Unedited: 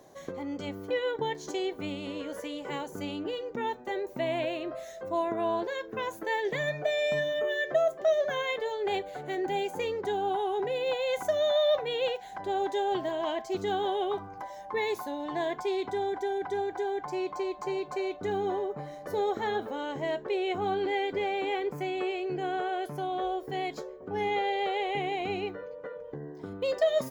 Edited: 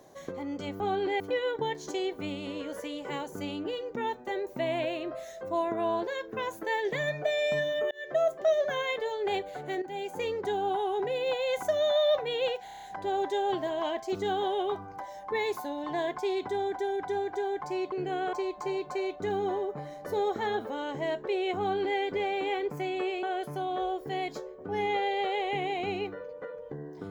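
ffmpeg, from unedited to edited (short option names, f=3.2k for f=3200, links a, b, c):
-filter_complex "[0:a]asplit=14[a][b][c][d][e][f][g][h][i][j][k][l][m][n];[a]atrim=end=0.802[o];[b]atrim=start=20.588:end=20.992[p];[c]atrim=start=0.798:end=7.51,asetpts=PTS-STARTPTS,afade=t=out:st=6.708:d=0.004:c=hsin[q];[d]atrim=start=7.51:end=9.42,asetpts=PTS-STARTPTS,afade=t=in:d=0.32,afade=t=out:st=1.906:d=0.004:c=hsin:silence=0.251189[r];[e]atrim=start=9.42:end=12.282,asetpts=PTS-STARTPTS,afade=t=in:d=0.45:silence=0.251189[s];[f]atrim=start=12.248:end=12.282[t];[g]atrim=start=12.248:end=12.282[u];[h]atrim=start=12.248:end=12.282[v];[i]atrim=start=12.248:end=12.282[w];[j]atrim=start=12.248:end=12.282[x];[k]atrim=start=12.248:end=17.342[y];[l]atrim=start=22.238:end=22.652[z];[m]atrim=start=17.338:end=22.242[aa];[n]atrim=start=22.648[ab];[o][p]acrossfade=d=0.004:c1=hsin:c2=hsin[ac];[q][r][s]concat=n=3:v=0:a=1[ad];[ac][ad]acrossfade=d=0.004:c1=hsin:c2=hsin[ae];[ae][t]acrossfade=d=0.004:c1=hsin:c2=hsin[af];[af][u]acrossfade=d=0.004:c1=hsin:c2=hsin[ag];[ag][v]acrossfade=d=0.004:c1=hsin:c2=hsin[ah];[ah][w]acrossfade=d=0.004:c1=hsin:c2=hsin[ai];[ai][x]acrossfade=d=0.004:c1=hsin:c2=hsin[aj];[aj][y]acrossfade=d=0.004:c1=hsin:c2=hsin[ak];[ak][z]acrossfade=d=0.004:c1=hsin:c2=hsin[al];[al][aa]acrossfade=d=0.004:c1=hsin:c2=hsin[am];[am][ab]acrossfade=d=0.004:c1=hsin:c2=hsin"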